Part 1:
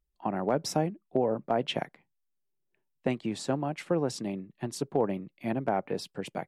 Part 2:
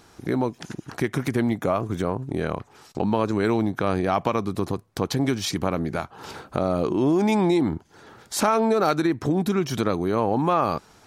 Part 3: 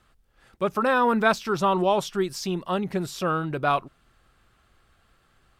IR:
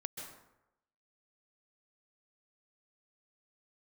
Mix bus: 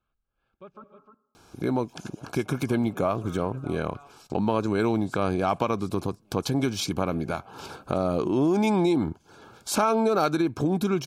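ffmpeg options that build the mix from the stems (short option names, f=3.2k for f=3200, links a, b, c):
-filter_complex "[0:a]acompressor=threshold=-35dB:ratio=6,highshelf=f=6.2k:g=10.5,adelay=1700,volume=-13dB,asplit=2[a][b];[b]volume=-13dB[c];[1:a]adelay=1350,volume=-2dB[d];[2:a]lowpass=3.1k,volume=-19.5dB,asplit=3[e][f][g];[e]atrim=end=0.84,asetpts=PTS-STARTPTS,afade=t=out:st=0.836:d=0.004:c=hsin[h];[f]atrim=start=0.84:end=2.64,asetpts=PTS-STARTPTS,volume=0[i];[g]atrim=start=2.64,asetpts=PTS-STARTPTS,afade=t=in:d=0.004:c=hsin[j];[h][i][j]concat=n=3:v=0:a=1,asplit=3[k][l][m];[l]volume=-7.5dB[n];[m]volume=-10.5dB[o];[a][k]amix=inputs=2:normalize=0,alimiter=level_in=16dB:limit=-24dB:level=0:latency=1:release=443,volume=-16dB,volume=0dB[p];[3:a]atrim=start_sample=2205[q];[n][q]afir=irnorm=-1:irlink=0[r];[c][o]amix=inputs=2:normalize=0,aecho=0:1:306:1[s];[d][p][r][s]amix=inputs=4:normalize=0,asuperstop=centerf=1900:order=12:qfactor=4.9"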